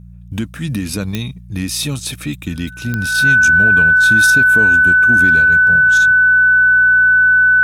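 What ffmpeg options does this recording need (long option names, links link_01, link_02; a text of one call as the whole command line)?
ffmpeg -i in.wav -af "adeclick=threshold=4,bandreject=frequency=59.1:width_type=h:width=4,bandreject=frequency=118.2:width_type=h:width=4,bandreject=frequency=177.3:width_type=h:width=4,bandreject=frequency=1500:width=30" out.wav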